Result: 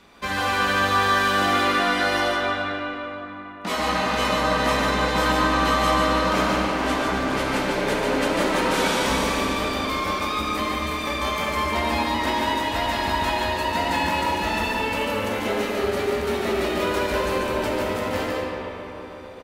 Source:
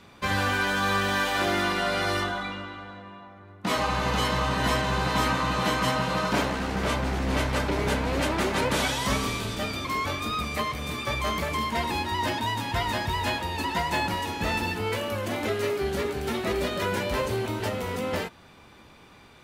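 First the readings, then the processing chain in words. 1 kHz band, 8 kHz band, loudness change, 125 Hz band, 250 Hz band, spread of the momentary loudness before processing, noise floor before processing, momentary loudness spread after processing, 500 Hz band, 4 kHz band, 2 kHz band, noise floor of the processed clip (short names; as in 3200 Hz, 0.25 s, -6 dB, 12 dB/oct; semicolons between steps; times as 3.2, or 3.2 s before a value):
+5.5 dB, +2.5 dB, +4.5 dB, -1.5 dB, +4.5 dB, 6 LU, -52 dBFS, 7 LU, +5.0 dB, +4.0 dB, +4.5 dB, -36 dBFS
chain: bell 120 Hz -14.5 dB 0.62 oct; on a send: echo 0.145 s -4 dB; on the sum: digital reverb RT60 4.1 s, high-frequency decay 0.5×, pre-delay 25 ms, DRR -0.5 dB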